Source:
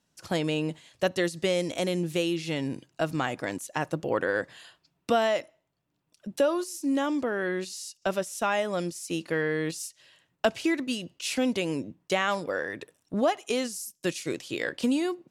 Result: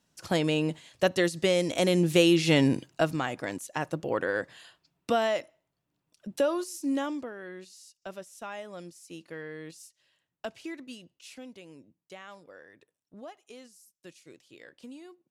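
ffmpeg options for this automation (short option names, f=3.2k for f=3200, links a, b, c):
-af "volume=9dB,afade=t=in:st=1.66:d=0.94:silence=0.421697,afade=t=out:st=2.6:d=0.59:silence=0.281838,afade=t=out:st=6.92:d=0.42:silence=0.281838,afade=t=out:st=10.94:d=0.55:silence=0.446684"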